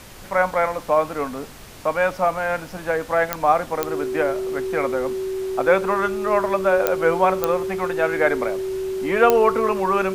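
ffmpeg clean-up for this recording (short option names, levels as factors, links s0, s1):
-af "adeclick=t=4,bandreject=f=380:w=30,afftdn=nr=30:nf=-36"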